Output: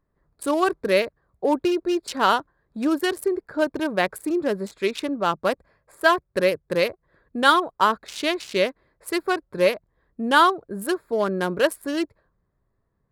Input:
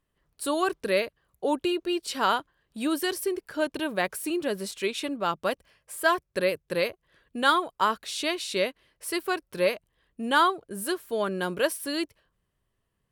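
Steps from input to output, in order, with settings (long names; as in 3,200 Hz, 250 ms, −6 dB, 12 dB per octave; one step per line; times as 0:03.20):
adaptive Wiener filter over 15 samples
level +5.5 dB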